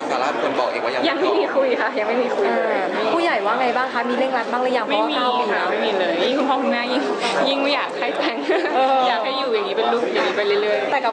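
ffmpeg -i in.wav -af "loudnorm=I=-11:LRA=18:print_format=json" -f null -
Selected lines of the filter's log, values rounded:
"input_i" : "-19.5",
"input_tp" : "-6.1",
"input_lra" : "0.5",
"input_thresh" : "-29.5",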